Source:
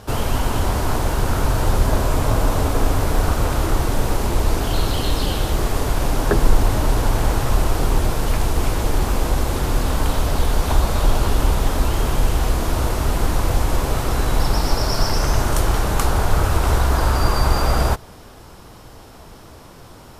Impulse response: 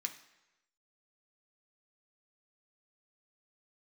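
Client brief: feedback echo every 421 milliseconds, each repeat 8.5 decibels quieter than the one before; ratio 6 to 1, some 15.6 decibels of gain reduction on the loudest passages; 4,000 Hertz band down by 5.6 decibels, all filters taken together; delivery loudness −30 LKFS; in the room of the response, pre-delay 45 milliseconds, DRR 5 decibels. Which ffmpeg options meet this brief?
-filter_complex "[0:a]equalizer=frequency=4000:width_type=o:gain=-7.5,acompressor=threshold=-25dB:ratio=6,aecho=1:1:421|842|1263|1684:0.376|0.143|0.0543|0.0206,asplit=2[link_01][link_02];[1:a]atrim=start_sample=2205,adelay=45[link_03];[link_02][link_03]afir=irnorm=-1:irlink=0,volume=-4dB[link_04];[link_01][link_04]amix=inputs=2:normalize=0,volume=0.5dB"

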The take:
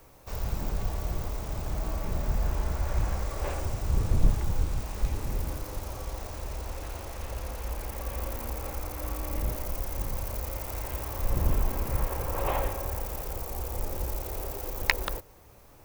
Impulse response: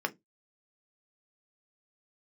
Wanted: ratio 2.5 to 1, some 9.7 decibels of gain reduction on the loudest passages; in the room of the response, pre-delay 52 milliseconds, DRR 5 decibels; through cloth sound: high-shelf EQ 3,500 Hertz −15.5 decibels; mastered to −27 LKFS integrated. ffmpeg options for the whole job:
-filter_complex "[0:a]acompressor=threshold=-29dB:ratio=2.5,asplit=2[link_01][link_02];[1:a]atrim=start_sample=2205,adelay=52[link_03];[link_02][link_03]afir=irnorm=-1:irlink=0,volume=-11.5dB[link_04];[link_01][link_04]amix=inputs=2:normalize=0,highshelf=frequency=3500:gain=-15.5,volume=10dB"

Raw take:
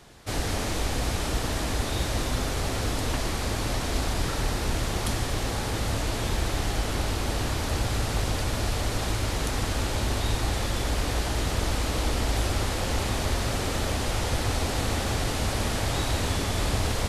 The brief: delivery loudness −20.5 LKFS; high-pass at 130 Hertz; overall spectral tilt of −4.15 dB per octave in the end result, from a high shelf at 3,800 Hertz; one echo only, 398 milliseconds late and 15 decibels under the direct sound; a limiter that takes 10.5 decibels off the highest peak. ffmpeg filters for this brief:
ffmpeg -i in.wav -af "highpass=130,highshelf=frequency=3800:gain=-6.5,alimiter=level_in=4dB:limit=-24dB:level=0:latency=1,volume=-4dB,aecho=1:1:398:0.178,volume=16dB" out.wav

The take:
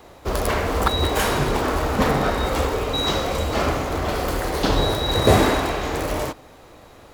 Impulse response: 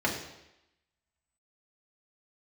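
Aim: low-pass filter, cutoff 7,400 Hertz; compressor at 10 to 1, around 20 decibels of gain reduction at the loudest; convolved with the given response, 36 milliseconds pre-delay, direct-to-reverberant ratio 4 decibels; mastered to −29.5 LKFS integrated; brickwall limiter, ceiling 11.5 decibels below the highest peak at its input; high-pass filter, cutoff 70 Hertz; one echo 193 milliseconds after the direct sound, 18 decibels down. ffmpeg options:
-filter_complex "[0:a]highpass=70,lowpass=7400,acompressor=threshold=-31dB:ratio=10,alimiter=level_in=7dB:limit=-24dB:level=0:latency=1,volume=-7dB,aecho=1:1:193:0.126,asplit=2[link_01][link_02];[1:a]atrim=start_sample=2205,adelay=36[link_03];[link_02][link_03]afir=irnorm=-1:irlink=0,volume=-15dB[link_04];[link_01][link_04]amix=inputs=2:normalize=0,volume=8.5dB"

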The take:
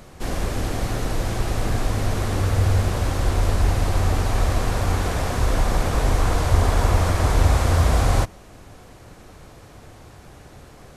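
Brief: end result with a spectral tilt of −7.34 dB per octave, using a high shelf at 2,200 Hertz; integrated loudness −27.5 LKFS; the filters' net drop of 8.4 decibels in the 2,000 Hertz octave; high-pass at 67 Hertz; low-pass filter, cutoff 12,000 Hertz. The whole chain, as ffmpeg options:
ffmpeg -i in.wav -af "highpass=67,lowpass=12000,equalizer=frequency=2000:width_type=o:gain=-7,highshelf=frequency=2200:gain=-8,volume=-3dB" out.wav

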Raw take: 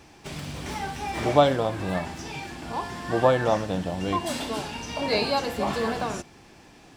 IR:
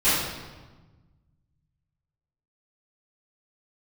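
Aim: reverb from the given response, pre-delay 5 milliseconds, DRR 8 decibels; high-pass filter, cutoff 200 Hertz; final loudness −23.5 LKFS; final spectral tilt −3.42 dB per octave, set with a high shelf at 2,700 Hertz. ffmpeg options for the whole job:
-filter_complex "[0:a]highpass=200,highshelf=frequency=2700:gain=6,asplit=2[link_01][link_02];[1:a]atrim=start_sample=2205,adelay=5[link_03];[link_02][link_03]afir=irnorm=-1:irlink=0,volume=-25.5dB[link_04];[link_01][link_04]amix=inputs=2:normalize=0,volume=2dB"

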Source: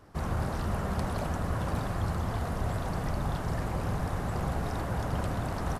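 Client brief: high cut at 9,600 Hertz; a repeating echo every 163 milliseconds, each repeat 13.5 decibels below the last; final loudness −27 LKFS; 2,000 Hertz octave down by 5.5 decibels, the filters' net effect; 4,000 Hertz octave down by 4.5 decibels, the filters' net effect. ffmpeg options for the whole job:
ffmpeg -i in.wav -af "lowpass=9600,equalizer=frequency=2000:width_type=o:gain=-7,equalizer=frequency=4000:width_type=o:gain=-3.5,aecho=1:1:163|326:0.211|0.0444,volume=6dB" out.wav

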